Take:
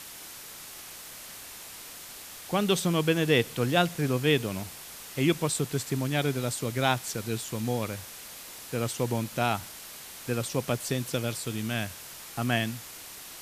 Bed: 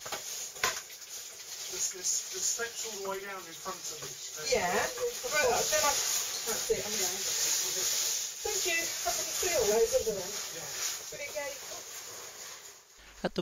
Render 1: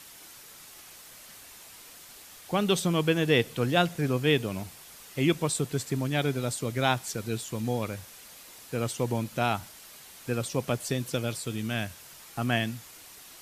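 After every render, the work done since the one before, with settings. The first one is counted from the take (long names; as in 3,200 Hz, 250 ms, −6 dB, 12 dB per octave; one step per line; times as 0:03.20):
broadband denoise 6 dB, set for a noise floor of −44 dBFS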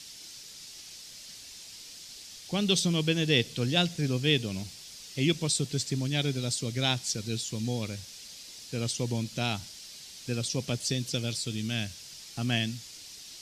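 drawn EQ curve 200 Hz 0 dB, 1,200 Hz −11 dB, 5,100 Hz +10 dB, 14,000 Hz −10 dB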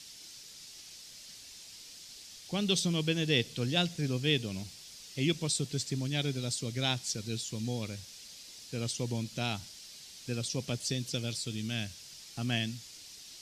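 level −3.5 dB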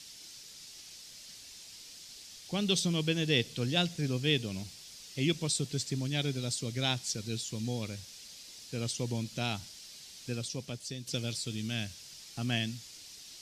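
0:10.25–0:11.07: fade out quadratic, to −7.5 dB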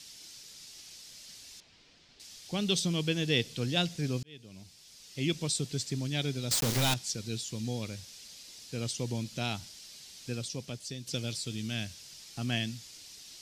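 0:01.60–0:02.20: Bessel low-pass filter 2,000 Hz
0:04.23–0:05.42: fade in
0:06.51–0:06.94: log-companded quantiser 2 bits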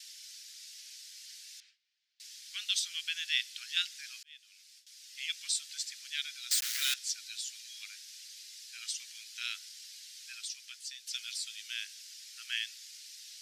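noise gate with hold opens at −46 dBFS
Butterworth high-pass 1,500 Hz 48 dB per octave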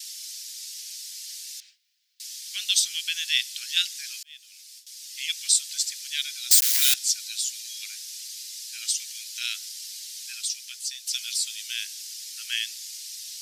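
high-pass filter 860 Hz
spectral tilt +4.5 dB per octave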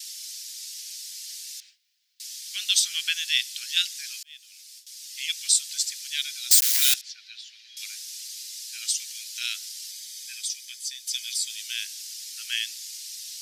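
0:02.59–0:03.13: parametric band 1,100 Hz +2.5 dB → +12 dB 1.6 octaves
0:07.01–0:07.77: high-frequency loss of the air 300 metres
0:09.91–0:11.50: notch comb filter 1,400 Hz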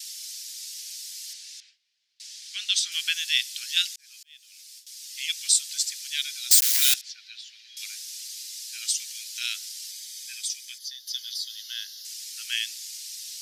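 0:01.33–0:02.92: high-frequency loss of the air 59 metres
0:03.96–0:04.60: fade in
0:10.78–0:12.05: phaser with its sweep stopped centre 2,400 Hz, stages 6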